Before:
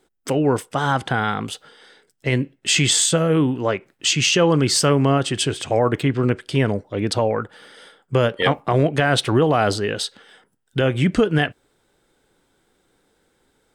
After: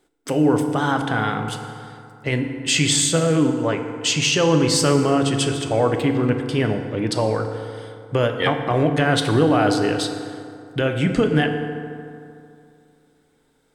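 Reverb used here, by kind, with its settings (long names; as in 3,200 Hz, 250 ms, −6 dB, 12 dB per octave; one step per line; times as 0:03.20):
feedback delay network reverb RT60 2.5 s, low-frequency decay 1×, high-frequency decay 0.5×, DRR 5 dB
level −2 dB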